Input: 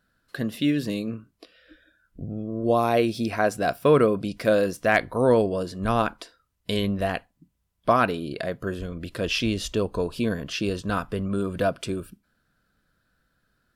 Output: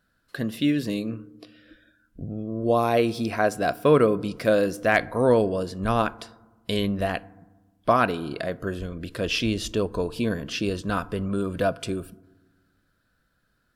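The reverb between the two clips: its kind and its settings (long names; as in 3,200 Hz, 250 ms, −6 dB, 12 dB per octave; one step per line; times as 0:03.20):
feedback delay network reverb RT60 1.2 s, low-frequency decay 1.5×, high-frequency decay 0.3×, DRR 19 dB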